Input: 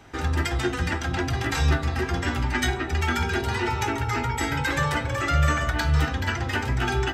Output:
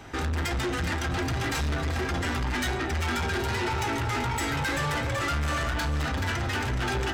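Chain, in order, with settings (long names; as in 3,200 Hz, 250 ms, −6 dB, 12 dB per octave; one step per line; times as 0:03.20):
in parallel at −2.5 dB: brickwall limiter −20 dBFS, peak gain reduction 9.5 dB
on the sum: soft clipping −25.5 dBFS, distortion −8 dB
feedback echo with a high-pass in the loop 384 ms, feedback 54%, level −12 dB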